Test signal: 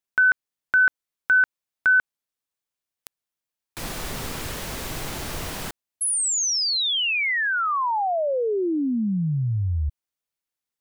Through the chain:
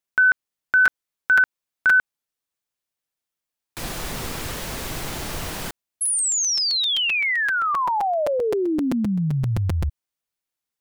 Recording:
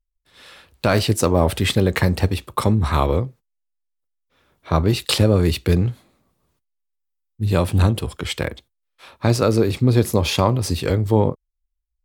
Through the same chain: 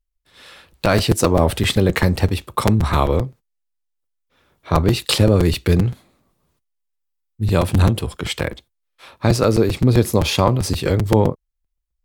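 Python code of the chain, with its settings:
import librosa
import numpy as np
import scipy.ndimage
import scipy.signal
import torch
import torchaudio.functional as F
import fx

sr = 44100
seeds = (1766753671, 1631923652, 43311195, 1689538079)

y = fx.buffer_crackle(x, sr, first_s=0.72, period_s=0.13, block=256, kind='repeat')
y = y * 10.0 ** (1.5 / 20.0)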